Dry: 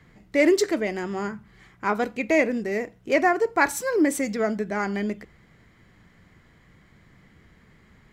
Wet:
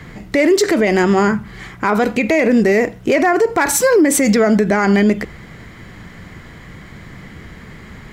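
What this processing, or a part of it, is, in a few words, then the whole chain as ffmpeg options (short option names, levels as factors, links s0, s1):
loud club master: -af "acompressor=threshold=0.0794:ratio=2,asoftclip=type=hard:threshold=0.188,alimiter=level_in=15.8:limit=0.891:release=50:level=0:latency=1,volume=0.562"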